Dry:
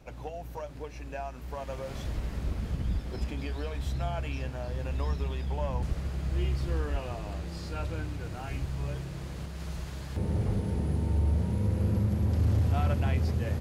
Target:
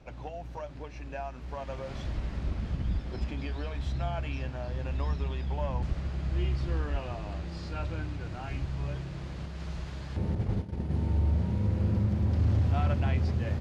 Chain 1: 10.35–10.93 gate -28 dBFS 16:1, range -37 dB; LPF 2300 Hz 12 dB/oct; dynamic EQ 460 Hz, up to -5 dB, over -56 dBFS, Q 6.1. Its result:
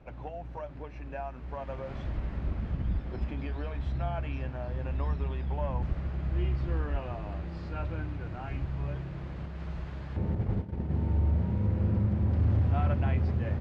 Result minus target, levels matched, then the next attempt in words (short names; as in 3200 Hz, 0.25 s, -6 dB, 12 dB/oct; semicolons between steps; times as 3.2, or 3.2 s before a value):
4000 Hz band -7.0 dB
10.35–10.93 gate -28 dBFS 16:1, range -37 dB; LPF 5200 Hz 12 dB/oct; dynamic EQ 460 Hz, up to -5 dB, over -56 dBFS, Q 6.1